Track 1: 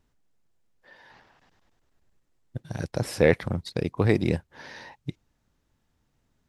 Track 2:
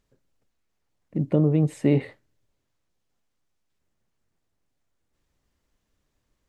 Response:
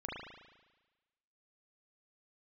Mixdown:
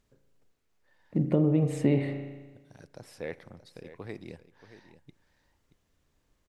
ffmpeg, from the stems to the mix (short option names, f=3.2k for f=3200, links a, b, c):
-filter_complex "[0:a]lowshelf=f=160:g=-8.5,volume=-17.5dB,asplit=3[a][b][c];[b]volume=-19.5dB[d];[c]volume=-13dB[e];[1:a]volume=-1.5dB,asplit=2[f][g];[g]volume=-5dB[h];[2:a]atrim=start_sample=2205[i];[d][h]amix=inputs=2:normalize=0[j];[j][i]afir=irnorm=-1:irlink=0[k];[e]aecho=0:1:628:1[l];[a][f][k][l]amix=inputs=4:normalize=0,acompressor=threshold=-23dB:ratio=2"